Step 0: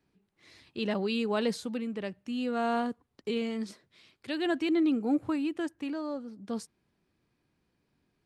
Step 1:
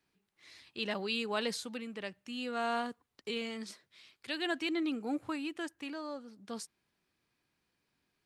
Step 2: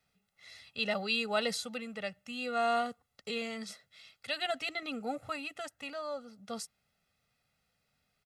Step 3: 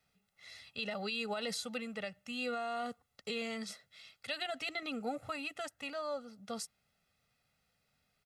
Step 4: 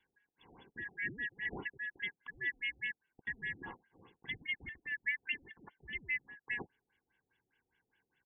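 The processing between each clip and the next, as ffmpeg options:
-af "tiltshelf=f=730:g=-6,volume=0.631"
-af "aecho=1:1:1.5:0.99"
-af "alimiter=level_in=1.68:limit=0.0631:level=0:latency=1:release=92,volume=0.596"
-af "afftfilt=real='real(if(lt(b,272),68*(eq(floor(b/68),0)*3+eq(floor(b/68),1)*0+eq(floor(b/68),2)*1+eq(floor(b/68),3)*2)+mod(b,68),b),0)':imag='imag(if(lt(b,272),68*(eq(floor(b/68),0)*3+eq(floor(b/68),1)*0+eq(floor(b/68),2)*1+eq(floor(b/68),3)*2)+mod(b,68),b),0)':win_size=2048:overlap=0.75,afftfilt=real='re*lt(b*sr/1024,740*pow(3500/740,0.5+0.5*sin(2*PI*4.9*pts/sr)))':imag='im*lt(b*sr/1024,740*pow(3500/740,0.5+0.5*sin(2*PI*4.9*pts/sr)))':win_size=1024:overlap=0.75,volume=1.41"

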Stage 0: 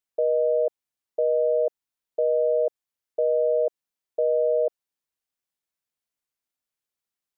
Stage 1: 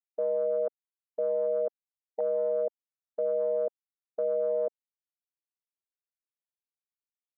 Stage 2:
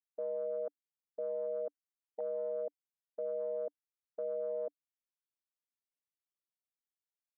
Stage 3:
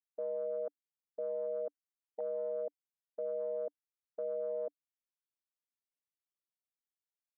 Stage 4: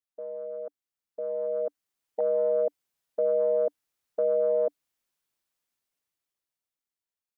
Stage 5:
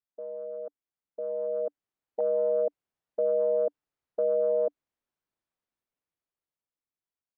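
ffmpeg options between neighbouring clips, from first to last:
-af "afftfilt=real='re*gte(hypot(re,im),0.0112)':imag='im*gte(hypot(re,im),0.0112)':win_size=1024:overlap=0.75,afwtdn=0.0355,volume=0.501"
-af "equalizer=f=290:t=o:w=0.22:g=7,volume=0.355"
-af anull
-af "dynaudnorm=f=250:g=13:m=4.22"
-af "lowpass=f=1100:p=1"

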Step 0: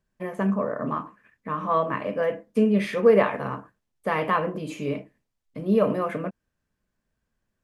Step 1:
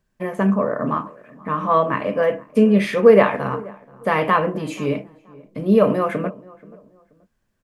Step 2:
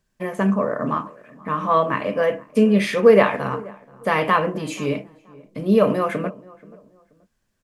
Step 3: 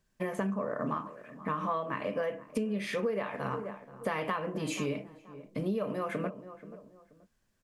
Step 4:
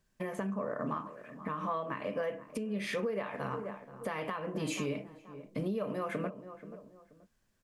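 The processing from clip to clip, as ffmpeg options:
-filter_complex "[0:a]asplit=2[s0][s1];[s1]adelay=480,lowpass=f=1200:p=1,volume=0.0841,asplit=2[s2][s3];[s3]adelay=480,lowpass=f=1200:p=1,volume=0.33[s4];[s0][s2][s4]amix=inputs=3:normalize=0,volume=2"
-af "equalizer=f=6500:w=0.43:g=6,volume=0.841"
-af "acompressor=threshold=0.0501:ratio=12,volume=0.708"
-af "alimiter=level_in=1.12:limit=0.0631:level=0:latency=1:release=300,volume=0.891"

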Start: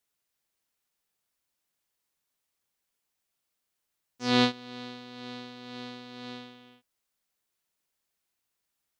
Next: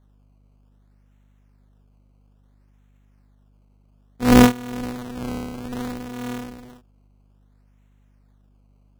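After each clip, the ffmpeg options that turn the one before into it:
-af "acrusher=samples=17:mix=1:aa=0.000001:lfo=1:lforange=17:lforate=0.6,lowshelf=f=360:g=9,aeval=exprs='val(0)+0.000708*(sin(2*PI*50*n/s)+sin(2*PI*2*50*n/s)/2+sin(2*PI*3*50*n/s)/3+sin(2*PI*4*50*n/s)/4+sin(2*PI*5*50*n/s)/5)':c=same,volume=2.24"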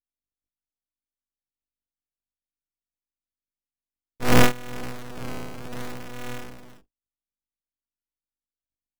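-filter_complex "[0:a]agate=range=0.00631:threshold=0.00282:ratio=16:detection=peak,acrossover=split=1300[s0][s1];[s0]aeval=exprs='abs(val(0))':c=same[s2];[s2][s1]amix=inputs=2:normalize=0,volume=0.841"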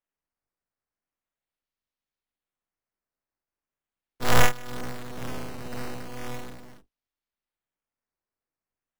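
-filter_complex "[0:a]equalizer=f=2500:t=o:w=0.25:g=-4.5,acrossover=split=130|490|3500[s0][s1][s2][s3];[s1]acompressor=threshold=0.0141:ratio=6[s4];[s0][s4][s2][s3]amix=inputs=4:normalize=0,acrusher=samples=9:mix=1:aa=0.000001:lfo=1:lforange=9:lforate=0.39"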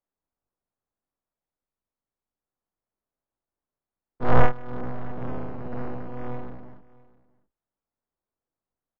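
-af "lowpass=1100,aecho=1:1:655:0.0708,volume=1.5"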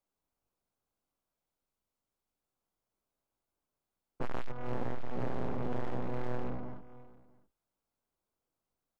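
-af "bandreject=f=1800:w=9,acompressor=threshold=0.112:ratio=10,volume=31.6,asoftclip=hard,volume=0.0316,volume=1.33"

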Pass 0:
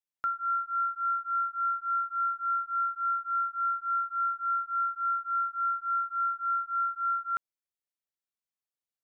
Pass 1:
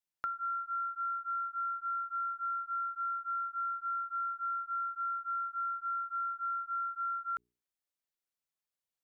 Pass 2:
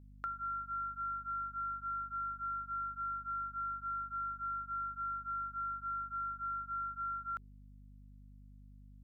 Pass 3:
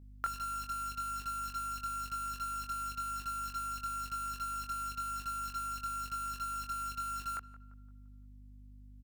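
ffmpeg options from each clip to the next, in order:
-af "bandreject=f=60:t=h:w=6,bandreject=f=120:t=h:w=6,bandreject=f=180:t=h:w=6,bandreject=f=240:t=h:w=6,bandreject=f=300:t=h:w=6,bandreject=f=360:t=h:w=6,bandreject=f=420:t=h:w=6,acompressor=threshold=0.02:ratio=6"
-af "aeval=exprs='val(0)+0.00282*(sin(2*PI*50*n/s)+sin(2*PI*2*50*n/s)/2+sin(2*PI*3*50*n/s)/3+sin(2*PI*4*50*n/s)/4+sin(2*PI*5*50*n/s)/5)':c=same,volume=0.668"
-filter_complex "[0:a]asplit=2[s0][s1];[s1]acrusher=bits=6:mix=0:aa=0.000001,volume=0.631[s2];[s0][s2]amix=inputs=2:normalize=0,asplit=2[s3][s4];[s4]adelay=23,volume=0.531[s5];[s3][s5]amix=inputs=2:normalize=0,asplit=2[s6][s7];[s7]adelay=172,lowpass=f=1600:p=1,volume=0.178,asplit=2[s8][s9];[s9]adelay=172,lowpass=f=1600:p=1,volume=0.49,asplit=2[s10][s11];[s11]adelay=172,lowpass=f=1600:p=1,volume=0.49,asplit=2[s12][s13];[s13]adelay=172,lowpass=f=1600:p=1,volume=0.49,asplit=2[s14][s15];[s15]adelay=172,lowpass=f=1600:p=1,volume=0.49[s16];[s6][s8][s10][s12][s14][s16]amix=inputs=6:normalize=0,volume=1.19"

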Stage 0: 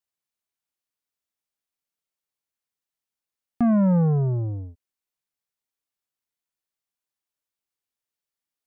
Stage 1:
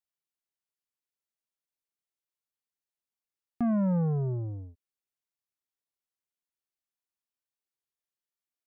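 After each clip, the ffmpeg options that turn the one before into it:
-af "equalizer=f=380:w=7:g=4,volume=0.422"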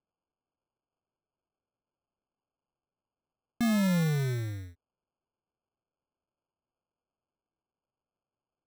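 -af "acrusher=samples=23:mix=1:aa=0.000001"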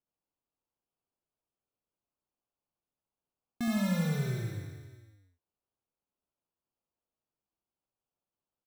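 -af "aecho=1:1:70|161|279.3|433.1|633:0.631|0.398|0.251|0.158|0.1,volume=0.531"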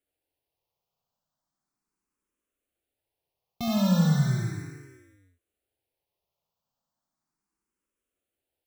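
-filter_complex "[0:a]asplit=2[s0][s1];[s1]afreqshift=0.36[s2];[s0][s2]amix=inputs=2:normalize=1,volume=2.82"

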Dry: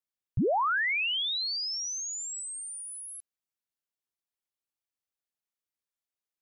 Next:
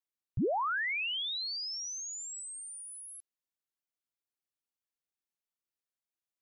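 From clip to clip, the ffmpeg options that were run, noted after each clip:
-af "equalizer=f=330:t=o:w=0.43:g=3.5,volume=0.562"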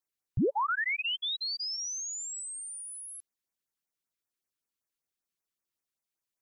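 -af "afftfilt=real='re*(1-between(b*sr/1024,610*pow(3900/610,0.5+0.5*sin(2*PI*5.2*pts/sr))/1.41,610*pow(3900/610,0.5+0.5*sin(2*PI*5.2*pts/sr))*1.41))':imag='im*(1-between(b*sr/1024,610*pow(3900/610,0.5+0.5*sin(2*PI*5.2*pts/sr))/1.41,610*pow(3900/610,0.5+0.5*sin(2*PI*5.2*pts/sr))*1.41))':win_size=1024:overlap=0.75,volume=1.5"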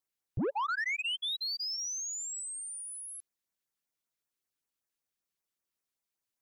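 -af "asoftclip=type=tanh:threshold=0.0398"

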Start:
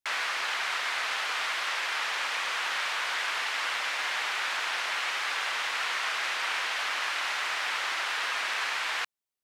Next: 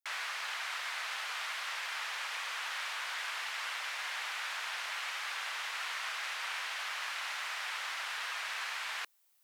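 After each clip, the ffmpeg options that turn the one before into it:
-af "highpass=600,highshelf=f=11000:g=9.5,areverse,acompressor=mode=upward:threshold=0.00631:ratio=2.5,areverse,volume=0.398"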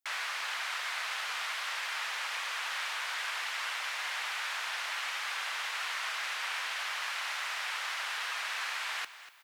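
-af "aecho=1:1:242|484|726:0.188|0.0622|0.0205,volume=1.33"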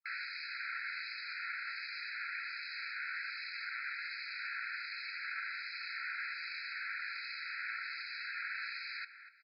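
-filter_complex "[0:a]acrossover=split=2500[s0][s1];[s0]aeval=exprs='val(0)*(1-0.7/2+0.7/2*cos(2*PI*1.3*n/s))':c=same[s2];[s1]aeval=exprs='val(0)*(1-0.7/2-0.7/2*cos(2*PI*1.3*n/s))':c=same[s3];[s2][s3]amix=inputs=2:normalize=0,aresample=11025,aresample=44100,afftfilt=real='re*eq(mod(floor(b*sr/1024/1300),2),1)':imag='im*eq(mod(floor(b*sr/1024/1300),2),1)':win_size=1024:overlap=0.75"

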